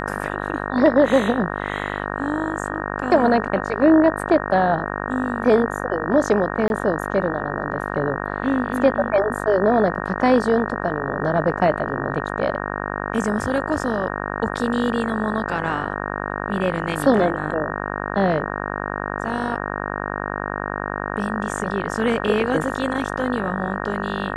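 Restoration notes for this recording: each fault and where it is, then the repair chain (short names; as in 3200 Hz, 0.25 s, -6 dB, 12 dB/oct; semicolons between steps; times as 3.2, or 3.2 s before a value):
buzz 50 Hz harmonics 37 -27 dBFS
6.68–6.7 gap 21 ms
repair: de-hum 50 Hz, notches 37; interpolate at 6.68, 21 ms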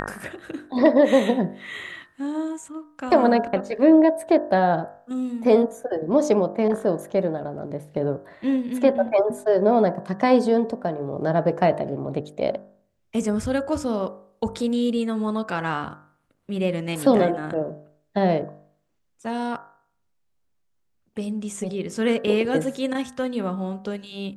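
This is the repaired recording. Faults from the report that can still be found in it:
none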